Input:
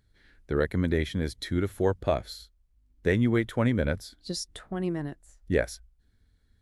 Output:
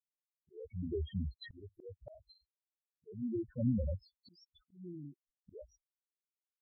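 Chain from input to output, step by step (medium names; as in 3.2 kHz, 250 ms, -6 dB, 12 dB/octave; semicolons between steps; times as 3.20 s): crossover distortion -46 dBFS; loudest bins only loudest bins 2; slow attack 719 ms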